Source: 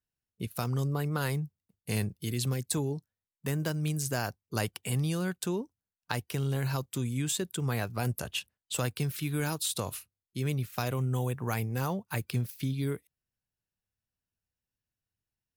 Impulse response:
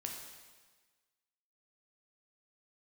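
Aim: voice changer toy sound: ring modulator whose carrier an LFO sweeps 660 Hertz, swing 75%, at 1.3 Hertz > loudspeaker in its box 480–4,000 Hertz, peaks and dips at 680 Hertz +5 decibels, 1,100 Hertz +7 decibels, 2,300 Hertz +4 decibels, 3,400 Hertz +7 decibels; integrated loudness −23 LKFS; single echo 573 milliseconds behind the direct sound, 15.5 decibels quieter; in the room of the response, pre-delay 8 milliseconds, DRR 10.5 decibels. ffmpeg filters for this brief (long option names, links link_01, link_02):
-filter_complex "[0:a]aecho=1:1:573:0.168,asplit=2[link_01][link_02];[1:a]atrim=start_sample=2205,adelay=8[link_03];[link_02][link_03]afir=irnorm=-1:irlink=0,volume=-9.5dB[link_04];[link_01][link_04]amix=inputs=2:normalize=0,aeval=exprs='val(0)*sin(2*PI*660*n/s+660*0.75/1.3*sin(2*PI*1.3*n/s))':channel_layout=same,highpass=480,equalizer=frequency=680:width_type=q:width=4:gain=5,equalizer=frequency=1100:width_type=q:width=4:gain=7,equalizer=frequency=2300:width_type=q:width=4:gain=4,equalizer=frequency=3400:width_type=q:width=4:gain=7,lowpass=frequency=4000:width=0.5412,lowpass=frequency=4000:width=1.3066,volume=9.5dB"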